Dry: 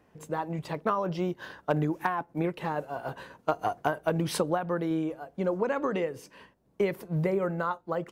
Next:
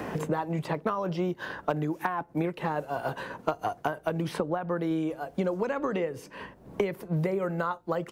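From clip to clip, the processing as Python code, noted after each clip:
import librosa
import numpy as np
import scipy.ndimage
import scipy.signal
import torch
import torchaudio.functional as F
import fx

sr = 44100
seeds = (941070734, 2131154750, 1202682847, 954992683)

y = fx.band_squash(x, sr, depth_pct=100)
y = y * librosa.db_to_amplitude(-1.0)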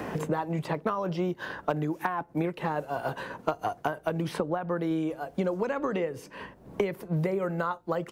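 y = x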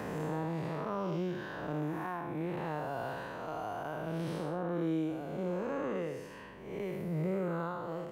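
y = fx.spec_blur(x, sr, span_ms=249.0)
y = y * librosa.db_to_amplitude(-2.0)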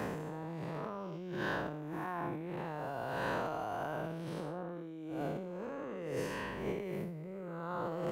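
y = fx.over_compress(x, sr, threshold_db=-43.0, ratio=-1.0)
y = y * librosa.db_to_amplitude(3.0)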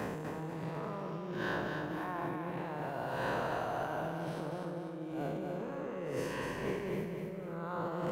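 y = fx.echo_feedback(x, sr, ms=246, feedback_pct=46, wet_db=-4.5)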